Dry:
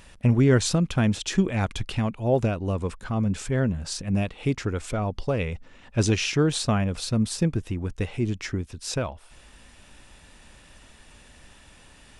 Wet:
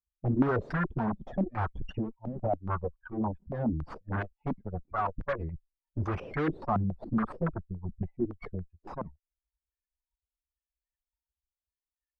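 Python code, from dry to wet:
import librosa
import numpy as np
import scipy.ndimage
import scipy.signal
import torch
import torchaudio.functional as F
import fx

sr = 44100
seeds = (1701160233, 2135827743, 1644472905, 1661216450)

p1 = fx.bin_expand(x, sr, power=3.0)
p2 = fx.over_compress(p1, sr, threshold_db=-31.0, ratio=-0.5)
p3 = p1 + F.gain(torch.from_numpy(p2), -2.0).numpy()
p4 = np.clip(10.0 ** (22.5 / 20.0) * p3, -1.0, 1.0) / 10.0 ** (22.5 / 20.0)
p5 = fx.cheby_harmonics(p4, sr, harmonics=(5, 6), levels_db=(-26, -9), full_scale_db=-22.5)
p6 = fx.filter_held_lowpass(p5, sr, hz=7.1, low_hz=210.0, high_hz=1600.0)
y = F.gain(torch.from_numpy(p6), -4.5).numpy()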